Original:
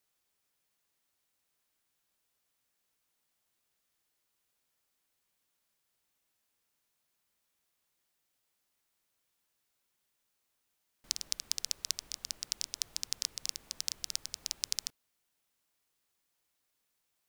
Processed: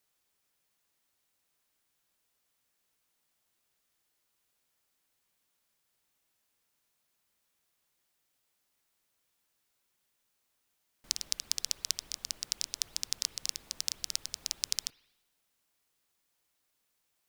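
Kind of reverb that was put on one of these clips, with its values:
spring reverb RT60 1 s, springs 50/56 ms, chirp 70 ms, DRR 17.5 dB
level +2 dB

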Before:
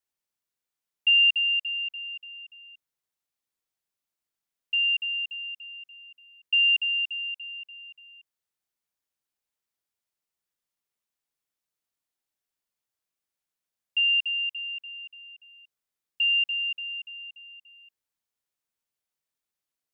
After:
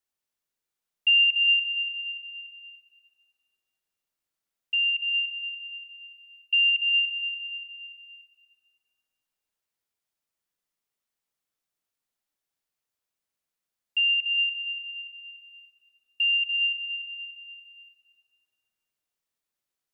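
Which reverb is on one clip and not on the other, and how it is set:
comb and all-pass reverb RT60 2.6 s, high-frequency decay 0.5×, pre-delay 80 ms, DRR 4 dB

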